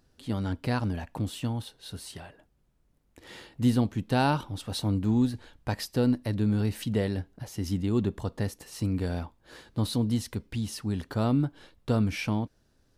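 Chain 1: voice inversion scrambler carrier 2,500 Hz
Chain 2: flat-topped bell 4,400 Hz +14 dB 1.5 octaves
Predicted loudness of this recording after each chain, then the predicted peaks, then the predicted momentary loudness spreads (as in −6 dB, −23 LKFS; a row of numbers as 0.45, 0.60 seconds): −26.0, −27.5 LKFS; −12.0, −8.0 dBFS; 12, 12 LU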